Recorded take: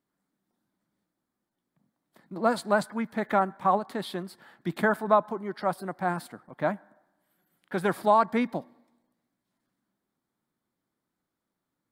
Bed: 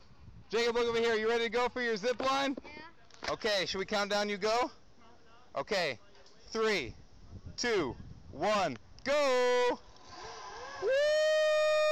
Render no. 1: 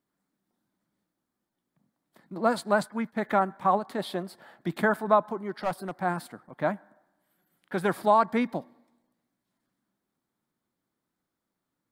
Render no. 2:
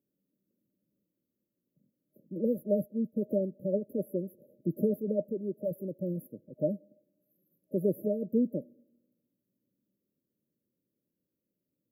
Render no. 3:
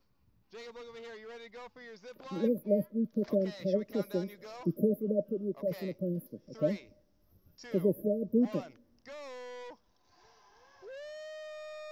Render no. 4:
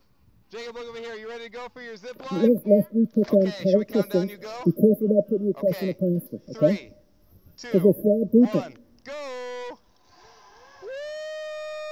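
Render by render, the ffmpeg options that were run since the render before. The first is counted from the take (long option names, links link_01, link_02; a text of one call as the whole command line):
ffmpeg -i in.wav -filter_complex "[0:a]asettb=1/sr,asplit=3[link_01][link_02][link_03];[link_01]atrim=end=2.494[link_04];[link_02]atrim=start=2.49:end=3.26,asetpts=PTS-STARTPTS,afade=type=in:duration=0.004:curve=qsin,afade=type=out:start_time=0.766:duration=0.004:curve=qsin,agate=range=-33dB:threshold=-41dB:ratio=3:release=100:detection=peak[link_05];[link_03]atrim=start=3.256[link_06];[link_04][link_05]acrossfade=duration=0.004:curve1=hsin:curve2=qsin[link_07];[link_07][link_06]acrossfade=duration=0.004:curve1=qsin:curve2=hsin,asettb=1/sr,asplit=3[link_08][link_09][link_10];[link_08]atrim=end=3.984[link_11];[link_09]atrim=start=3.98:end=4.68,asetpts=PTS-STARTPTS,afade=type=in:duration=0.004:curve=qsin,afade=type=out:start_time=0.696:duration=0.004:curve=qsin,equalizer=frequency=630:width=1.9:gain=8.5[link_12];[link_10]atrim=start=4.676[link_13];[link_11][link_12]acrossfade=duration=0.004:curve1=hsin:curve2=qsin[link_14];[link_14][link_13]acrossfade=duration=0.004:curve1=qsin:curve2=hsin,asettb=1/sr,asplit=3[link_15][link_16][link_17];[link_15]atrim=end=5.374[link_18];[link_16]atrim=start=5.37:end=5.95,asetpts=PTS-STARTPTS,afade=type=in:duration=0.004:curve=qsin,afade=type=out:start_time=0.576:duration=0.004:curve=qsin,aeval=exprs='clip(val(0),-1,0.0668)':channel_layout=same[link_19];[link_17]atrim=start=5.946[link_20];[link_18][link_19]acrossfade=duration=0.004:curve1=hsin:curve2=qsin[link_21];[link_21][link_20]acrossfade=duration=0.004:curve1=qsin:curve2=hsin" out.wav
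ffmpeg -i in.wav -af "highpass=73,afftfilt=real='re*(1-between(b*sr/4096,620,11000))':imag='im*(1-between(b*sr/4096,620,11000))':win_size=4096:overlap=0.75" out.wav
ffmpeg -i in.wav -i bed.wav -filter_complex "[1:a]volume=-17dB[link_01];[0:a][link_01]amix=inputs=2:normalize=0" out.wav
ffmpeg -i in.wav -af "volume=10.5dB" out.wav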